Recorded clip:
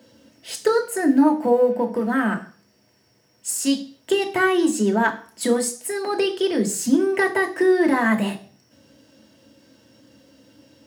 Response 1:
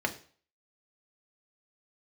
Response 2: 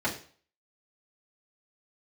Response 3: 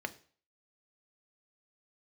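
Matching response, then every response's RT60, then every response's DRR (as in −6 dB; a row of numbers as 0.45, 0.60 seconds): 1; 0.45, 0.45, 0.45 seconds; 3.0, −6.5, 8.0 decibels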